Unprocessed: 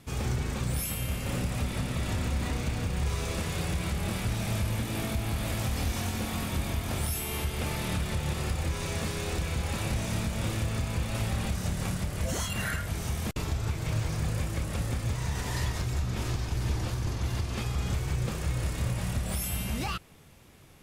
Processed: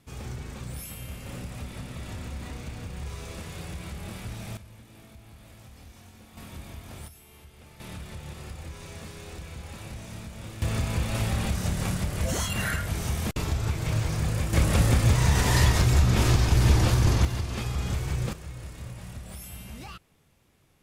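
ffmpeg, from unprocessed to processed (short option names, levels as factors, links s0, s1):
-af "asetnsamples=n=441:p=0,asendcmd='4.57 volume volume -19dB;6.37 volume volume -11dB;7.08 volume volume -19.5dB;7.8 volume volume -9.5dB;10.62 volume volume 3dB;14.53 volume volume 10dB;17.25 volume volume 1dB;18.33 volume volume -9.5dB',volume=0.447"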